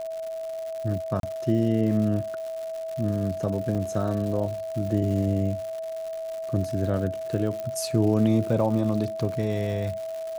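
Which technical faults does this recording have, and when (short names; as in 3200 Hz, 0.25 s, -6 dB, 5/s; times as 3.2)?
crackle 210/s -33 dBFS
tone 650 Hz -30 dBFS
1.2–1.23 gap 32 ms
3.75 gap 3.7 ms
7.6 pop -20 dBFS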